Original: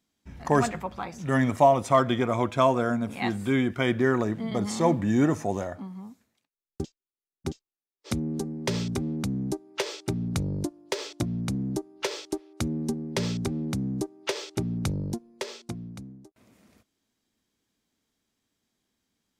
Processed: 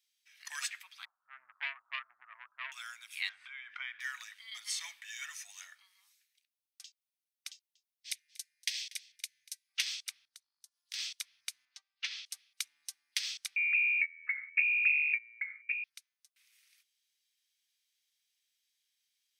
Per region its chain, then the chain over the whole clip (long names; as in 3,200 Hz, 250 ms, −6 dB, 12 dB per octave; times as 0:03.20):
0:01.05–0:02.72: Butterworth low-pass 1,300 Hz 72 dB per octave + saturating transformer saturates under 760 Hz
0:03.29–0:04.00: low-pass filter 1,200 Hz + mains-hum notches 60/120/180/240/300/360/420 Hz + envelope flattener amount 100%
0:07.51–0:09.69: elliptic band-stop filter 160–1,800 Hz + single-tap delay 238 ms −20 dB
0:10.25–0:10.94: parametric band 2,400 Hz −10 dB 0.64 octaves + downward compressor 4 to 1, threshold −45 dBFS
0:11.65–0:12.26: high-pass filter 400 Hz + high-frequency loss of the air 160 metres
0:13.56–0:15.84: phase distortion by the signal itself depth 0.14 ms + voice inversion scrambler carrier 2,600 Hz
whole clip: inverse Chebyshev high-pass filter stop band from 480 Hz, stop band 70 dB; notch filter 7,200 Hz, Q 7.2; level +1.5 dB